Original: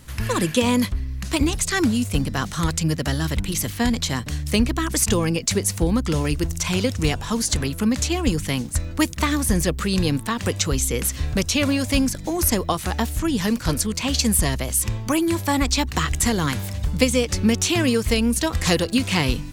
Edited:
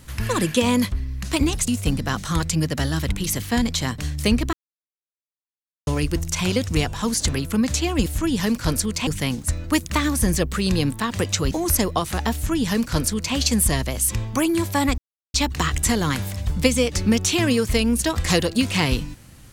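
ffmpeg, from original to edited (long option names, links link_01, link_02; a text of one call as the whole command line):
ffmpeg -i in.wav -filter_complex "[0:a]asplit=8[link_01][link_02][link_03][link_04][link_05][link_06][link_07][link_08];[link_01]atrim=end=1.682[link_09];[link_02]atrim=start=1.958:end=4.81,asetpts=PTS-STARTPTS,afade=type=out:start_time=2.848:duration=0.004:curve=hsin[link_10];[link_03]atrim=start=4.81:end=6.15,asetpts=PTS-STARTPTS,volume=0[link_11];[link_04]atrim=start=6.15:end=8.342,asetpts=PTS-STARTPTS,afade=type=in:duration=0.004:curve=hsin[link_12];[link_05]atrim=start=13.068:end=14.082[link_13];[link_06]atrim=start=8.338:end=10.782[link_14];[link_07]atrim=start=12.238:end=15.71,asetpts=PTS-STARTPTS,afade=type=out:start_time=3.468:duration=0.004:curve=hsin,apad=pad_dur=0.36[link_15];[link_08]atrim=start=15.71,asetpts=PTS-STARTPTS,afade=type=in:duration=0.004:curve=hsin[link_16];[link_10][link_11][link_12]concat=n=3:v=0:a=1[link_17];[link_09][link_17]acrossfade=duration=0.004:curve1=hsin:curve2=hsin[link_18];[link_18][link_13]acrossfade=duration=0.004:curve1=hsin:curve2=hsin[link_19];[link_19][link_14]acrossfade=duration=0.004:curve1=hsin:curve2=hsin[link_20];[link_15][link_16]concat=n=2:v=0:a=1[link_21];[link_20][link_21]acrossfade=duration=0.004:curve1=hsin:curve2=hsin" out.wav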